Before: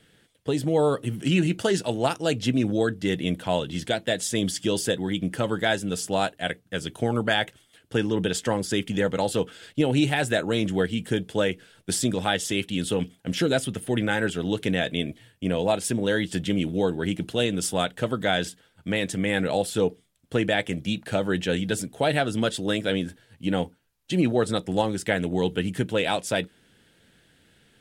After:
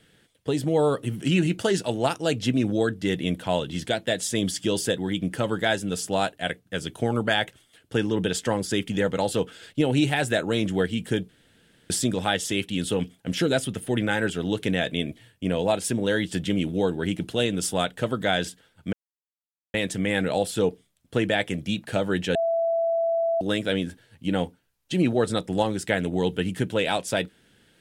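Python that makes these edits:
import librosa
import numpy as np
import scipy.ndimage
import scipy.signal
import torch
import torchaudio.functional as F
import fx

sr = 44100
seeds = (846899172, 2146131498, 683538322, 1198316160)

y = fx.edit(x, sr, fx.room_tone_fill(start_s=11.29, length_s=0.61),
    fx.insert_silence(at_s=18.93, length_s=0.81),
    fx.bleep(start_s=21.54, length_s=1.06, hz=666.0, db=-20.5), tone=tone)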